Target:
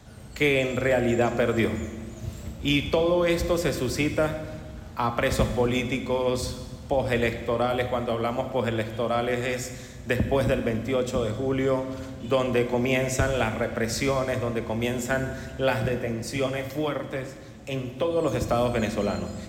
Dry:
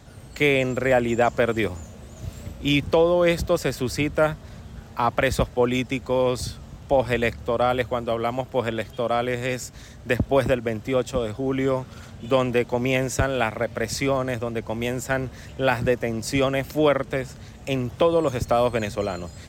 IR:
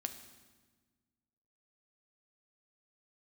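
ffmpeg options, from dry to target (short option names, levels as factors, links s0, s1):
-filter_complex "[0:a]acrossover=split=380|3000[s0][s1][s2];[s1]acompressor=threshold=0.0891:ratio=6[s3];[s0][s3][s2]amix=inputs=3:normalize=0,asplit=3[s4][s5][s6];[s4]afade=t=out:st=15.87:d=0.02[s7];[s5]flanger=delay=5:depth=5.3:regen=41:speed=1.9:shape=triangular,afade=t=in:st=15.87:d=0.02,afade=t=out:st=18.16:d=0.02[s8];[s6]afade=t=in:st=18.16:d=0.02[s9];[s7][s8][s9]amix=inputs=3:normalize=0[s10];[1:a]atrim=start_sample=2205,asetrate=40131,aresample=44100[s11];[s10][s11]afir=irnorm=-1:irlink=0"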